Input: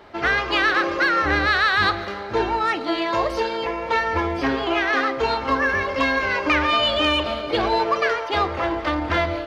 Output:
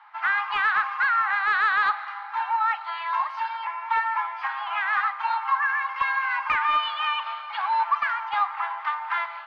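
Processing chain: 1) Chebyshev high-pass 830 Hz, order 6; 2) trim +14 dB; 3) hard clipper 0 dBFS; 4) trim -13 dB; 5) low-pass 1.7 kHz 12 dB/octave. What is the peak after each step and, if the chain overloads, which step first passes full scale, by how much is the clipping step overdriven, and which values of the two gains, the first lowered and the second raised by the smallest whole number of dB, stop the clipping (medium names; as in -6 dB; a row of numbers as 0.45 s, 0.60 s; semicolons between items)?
-9.0 dBFS, +5.0 dBFS, 0.0 dBFS, -13.0 dBFS, -13.0 dBFS; step 2, 5.0 dB; step 2 +9 dB, step 4 -8 dB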